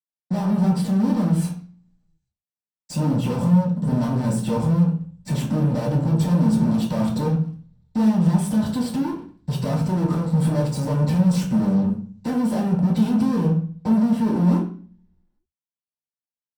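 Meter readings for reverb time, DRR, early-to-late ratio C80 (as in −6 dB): 0.40 s, −6.5 dB, 11.5 dB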